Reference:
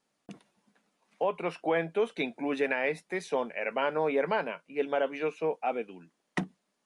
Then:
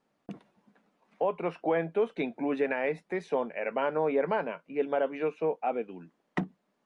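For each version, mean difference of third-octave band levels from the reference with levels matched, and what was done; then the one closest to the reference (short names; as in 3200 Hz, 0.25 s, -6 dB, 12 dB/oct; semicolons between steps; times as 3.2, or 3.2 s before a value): 2.5 dB: LPF 1300 Hz 6 dB/oct; in parallel at -0.5 dB: compressor, threshold -42 dBFS, peak gain reduction 17.5 dB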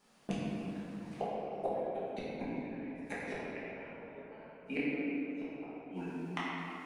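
10.5 dB: flipped gate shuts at -30 dBFS, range -40 dB; shoebox room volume 180 m³, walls hard, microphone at 1.3 m; gain +6 dB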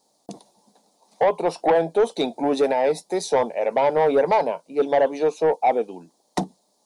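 4.0 dB: EQ curve 160 Hz 0 dB, 880 Hz +11 dB, 1400 Hz -10 dB, 2800 Hz -8 dB, 4000 Hz +10 dB; soft clip -17 dBFS, distortion -14 dB; gain +5.5 dB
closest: first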